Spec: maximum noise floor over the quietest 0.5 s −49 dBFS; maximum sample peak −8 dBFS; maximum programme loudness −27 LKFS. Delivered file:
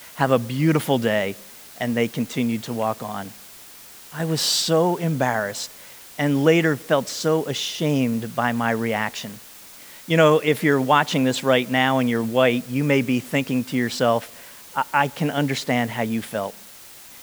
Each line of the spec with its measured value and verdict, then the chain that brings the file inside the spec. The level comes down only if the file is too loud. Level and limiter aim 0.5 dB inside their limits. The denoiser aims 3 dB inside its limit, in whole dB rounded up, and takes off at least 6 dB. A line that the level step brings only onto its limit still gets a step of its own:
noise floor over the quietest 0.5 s −44 dBFS: out of spec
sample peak −3.0 dBFS: out of spec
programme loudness −21.5 LKFS: out of spec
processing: level −6 dB

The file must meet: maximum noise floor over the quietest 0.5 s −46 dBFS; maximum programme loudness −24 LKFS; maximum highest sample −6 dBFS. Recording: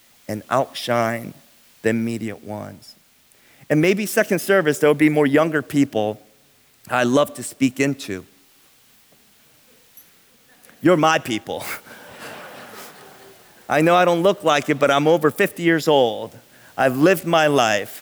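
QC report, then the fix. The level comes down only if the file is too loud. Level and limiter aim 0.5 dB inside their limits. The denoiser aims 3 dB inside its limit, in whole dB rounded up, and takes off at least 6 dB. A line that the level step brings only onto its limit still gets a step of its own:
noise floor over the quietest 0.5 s −56 dBFS: in spec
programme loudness −19.0 LKFS: out of spec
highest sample −5.0 dBFS: out of spec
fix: level −5.5 dB

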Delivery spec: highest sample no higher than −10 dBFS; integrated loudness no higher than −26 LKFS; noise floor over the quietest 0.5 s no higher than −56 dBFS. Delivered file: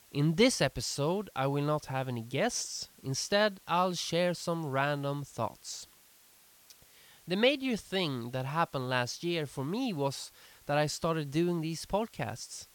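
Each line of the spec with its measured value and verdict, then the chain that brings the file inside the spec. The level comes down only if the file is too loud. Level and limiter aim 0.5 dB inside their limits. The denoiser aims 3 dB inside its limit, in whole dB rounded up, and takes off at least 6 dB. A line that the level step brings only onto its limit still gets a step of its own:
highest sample −11.5 dBFS: in spec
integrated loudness −32.0 LKFS: in spec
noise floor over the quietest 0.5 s −61 dBFS: in spec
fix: no processing needed

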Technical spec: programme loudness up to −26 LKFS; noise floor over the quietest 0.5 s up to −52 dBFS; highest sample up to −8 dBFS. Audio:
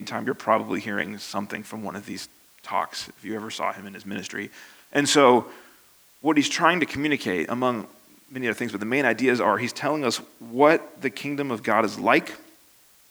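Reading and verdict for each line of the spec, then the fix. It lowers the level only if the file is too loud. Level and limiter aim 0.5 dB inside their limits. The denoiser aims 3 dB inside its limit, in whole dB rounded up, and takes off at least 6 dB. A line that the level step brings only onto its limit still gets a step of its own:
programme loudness −24.0 LKFS: out of spec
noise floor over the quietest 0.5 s −56 dBFS: in spec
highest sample −3.0 dBFS: out of spec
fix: level −2.5 dB
brickwall limiter −8.5 dBFS

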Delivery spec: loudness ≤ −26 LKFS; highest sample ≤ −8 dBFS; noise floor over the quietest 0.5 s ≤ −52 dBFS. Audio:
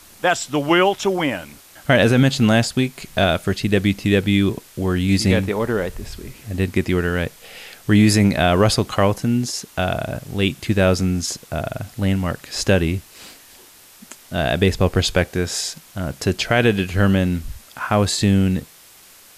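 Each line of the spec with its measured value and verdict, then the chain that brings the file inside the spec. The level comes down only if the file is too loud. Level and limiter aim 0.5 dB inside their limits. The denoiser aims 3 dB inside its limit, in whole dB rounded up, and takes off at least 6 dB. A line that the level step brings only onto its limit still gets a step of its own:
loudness −19.5 LKFS: out of spec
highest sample −4.5 dBFS: out of spec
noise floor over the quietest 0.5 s −47 dBFS: out of spec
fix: level −7 dB

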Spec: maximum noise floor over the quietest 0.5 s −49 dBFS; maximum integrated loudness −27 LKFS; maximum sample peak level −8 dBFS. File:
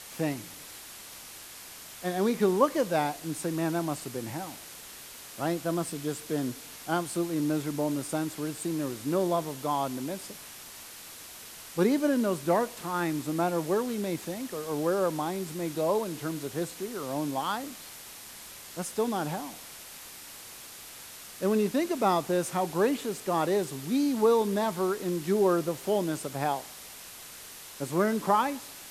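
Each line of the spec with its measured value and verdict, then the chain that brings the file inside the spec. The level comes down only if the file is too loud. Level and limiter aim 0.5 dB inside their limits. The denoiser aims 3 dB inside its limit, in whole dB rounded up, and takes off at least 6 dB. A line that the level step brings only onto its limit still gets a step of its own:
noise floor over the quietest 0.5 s −46 dBFS: out of spec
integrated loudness −29.5 LKFS: in spec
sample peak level −10.0 dBFS: in spec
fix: broadband denoise 6 dB, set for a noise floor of −46 dBFS

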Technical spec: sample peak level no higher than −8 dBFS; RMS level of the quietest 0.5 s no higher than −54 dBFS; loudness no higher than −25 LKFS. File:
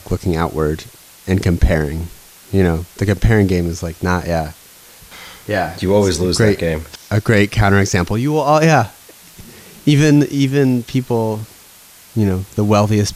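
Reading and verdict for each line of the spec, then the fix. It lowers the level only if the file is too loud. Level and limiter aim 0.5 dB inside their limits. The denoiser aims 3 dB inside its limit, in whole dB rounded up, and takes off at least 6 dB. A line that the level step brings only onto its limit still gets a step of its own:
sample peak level −2.0 dBFS: out of spec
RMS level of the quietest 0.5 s −43 dBFS: out of spec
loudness −16.0 LKFS: out of spec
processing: broadband denoise 6 dB, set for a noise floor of −43 dBFS
level −9.5 dB

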